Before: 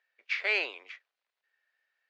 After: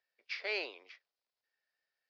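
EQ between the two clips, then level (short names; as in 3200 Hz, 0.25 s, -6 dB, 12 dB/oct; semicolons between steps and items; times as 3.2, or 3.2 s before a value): synth low-pass 5100 Hz, resonance Q 4.8; bell 1600 Hz -6.5 dB 2 oct; high shelf 2500 Hz -10.5 dB; -1.5 dB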